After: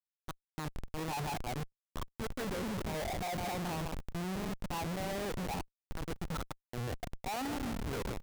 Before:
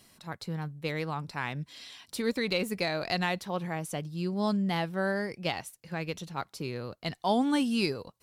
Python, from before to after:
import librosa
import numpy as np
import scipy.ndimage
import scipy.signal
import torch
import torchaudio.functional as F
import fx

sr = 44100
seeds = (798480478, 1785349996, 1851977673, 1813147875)

y = fx.high_shelf(x, sr, hz=4900.0, db=-12.0)
y = fx.auto_swell(y, sr, attack_ms=655.0)
y = fx.over_compress(y, sr, threshold_db=-39.0, ratio=-1.0)
y = fx.filter_lfo_lowpass(y, sr, shape='sine', hz=0.53, low_hz=730.0, high_hz=1500.0, q=7.7)
y = y + 10.0 ** (-10.5 / 20.0) * np.pad(y, (int(154 * sr / 1000.0), 0))[:len(y)]
y = fx.schmitt(y, sr, flips_db=-39.5)
y = fx.buffer_crackle(y, sr, first_s=0.88, period_s=0.12, block=128, kind='zero')